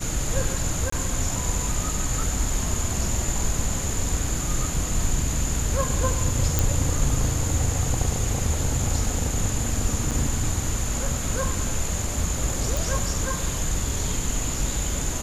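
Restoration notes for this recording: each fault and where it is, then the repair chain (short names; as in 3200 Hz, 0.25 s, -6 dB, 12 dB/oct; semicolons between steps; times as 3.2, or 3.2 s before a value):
0.9–0.92 gap 24 ms
6.59 pop
10.11–10.12 gap 6.3 ms
12.77 pop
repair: de-click; interpolate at 0.9, 24 ms; interpolate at 10.11, 6.3 ms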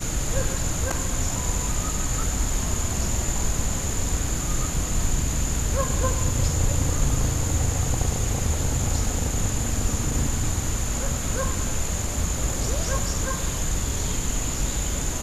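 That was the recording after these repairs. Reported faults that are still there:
none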